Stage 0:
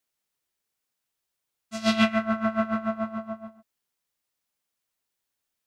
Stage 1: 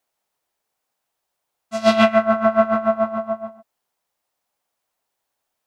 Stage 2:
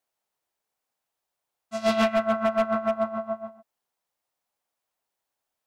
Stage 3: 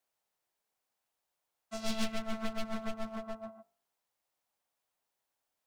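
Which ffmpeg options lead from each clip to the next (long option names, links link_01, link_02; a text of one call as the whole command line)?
ffmpeg -i in.wav -af "equalizer=frequency=750:width=0.93:gain=11.5,volume=2.5dB" out.wav
ffmpeg -i in.wav -af "asoftclip=type=hard:threshold=-10.5dB,volume=-6dB" out.wav
ffmpeg -i in.wav -filter_complex "[0:a]aeval=exprs='clip(val(0),-1,0.0224)':channel_layout=same,acrossover=split=230|3000[link_01][link_02][link_03];[link_02]acompressor=threshold=-39dB:ratio=6[link_04];[link_01][link_04][link_03]amix=inputs=3:normalize=0,bandreject=frequency=49.07:width_type=h:width=4,bandreject=frequency=98.14:width_type=h:width=4,bandreject=frequency=147.21:width_type=h:width=4,bandreject=frequency=196.28:width_type=h:width=4,bandreject=frequency=245.35:width_type=h:width=4,bandreject=frequency=294.42:width_type=h:width=4,bandreject=frequency=343.49:width_type=h:width=4,bandreject=frequency=392.56:width_type=h:width=4,bandreject=frequency=441.63:width_type=h:width=4,bandreject=frequency=490.7:width_type=h:width=4,bandreject=frequency=539.77:width_type=h:width=4,bandreject=frequency=588.84:width_type=h:width=4,bandreject=frequency=637.91:width_type=h:width=4,bandreject=frequency=686.98:width_type=h:width=4,bandreject=frequency=736.05:width_type=h:width=4,bandreject=frequency=785.12:width_type=h:width=4,bandreject=frequency=834.19:width_type=h:width=4,bandreject=frequency=883.26:width_type=h:width=4,bandreject=frequency=932.33:width_type=h:width=4,bandreject=frequency=981.4:width_type=h:width=4,bandreject=frequency=1030.47:width_type=h:width=4,bandreject=frequency=1079.54:width_type=h:width=4,bandreject=frequency=1128.61:width_type=h:width=4,bandreject=frequency=1177.68:width_type=h:width=4,bandreject=frequency=1226.75:width_type=h:width=4,bandreject=frequency=1275.82:width_type=h:width=4,bandreject=frequency=1324.89:width_type=h:width=4,bandreject=frequency=1373.96:width_type=h:width=4,volume=-1.5dB" out.wav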